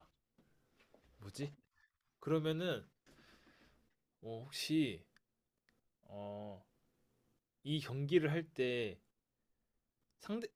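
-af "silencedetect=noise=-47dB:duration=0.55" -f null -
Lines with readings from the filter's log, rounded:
silence_start: 0.00
silence_end: 1.22 | silence_duration: 1.22
silence_start: 1.49
silence_end: 2.23 | silence_duration: 0.74
silence_start: 2.80
silence_end: 4.25 | silence_duration: 1.45
silence_start: 4.97
silence_end: 6.11 | silence_duration: 1.14
silence_start: 6.56
silence_end: 7.66 | silence_duration: 1.10
silence_start: 8.94
silence_end: 10.24 | silence_duration: 1.30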